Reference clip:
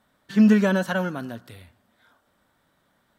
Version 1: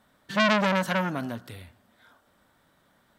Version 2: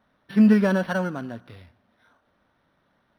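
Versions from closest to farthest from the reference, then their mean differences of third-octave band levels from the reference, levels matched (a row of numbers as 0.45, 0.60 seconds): 2, 1; 2.0, 6.5 decibels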